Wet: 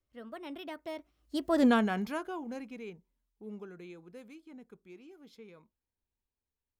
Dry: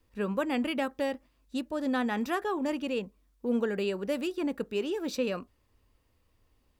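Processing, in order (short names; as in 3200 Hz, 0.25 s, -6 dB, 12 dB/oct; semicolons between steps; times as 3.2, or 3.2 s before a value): Doppler pass-by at 1.61, 46 m/s, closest 5.5 m; gain +7 dB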